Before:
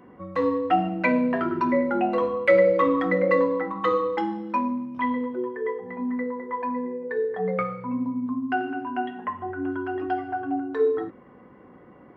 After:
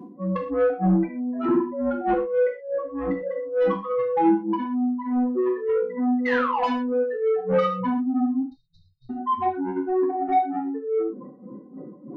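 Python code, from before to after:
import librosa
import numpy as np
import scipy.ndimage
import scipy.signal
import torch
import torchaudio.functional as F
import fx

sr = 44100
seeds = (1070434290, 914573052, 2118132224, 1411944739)

y = fx.spec_expand(x, sr, power=3.0)
y = scipy.signal.sosfilt(scipy.signal.butter(4, 92.0, 'highpass', fs=sr, output='sos'), y)
y = fx.over_compress(y, sr, threshold_db=-27.0, ratio=-0.5)
y = y * (1.0 - 0.82 / 2.0 + 0.82 / 2.0 * np.cos(2.0 * np.pi * 3.3 * (np.arange(len(y)) / sr)))
y = fx.spec_paint(y, sr, seeds[0], shape='fall', start_s=6.25, length_s=0.4, low_hz=660.0, high_hz=2100.0, level_db=-35.0)
y = 10.0 ** (-27.0 / 20.0) * np.tanh(y / 10.0 ** (-27.0 / 20.0))
y = fx.brickwall_bandstop(y, sr, low_hz=150.0, high_hz=3700.0, at=(8.41, 9.09), fade=0.02)
y = fx.rev_gated(y, sr, seeds[1], gate_ms=150, shape='falling', drr_db=-0.5)
y = y * 10.0 ** (8.5 / 20.0)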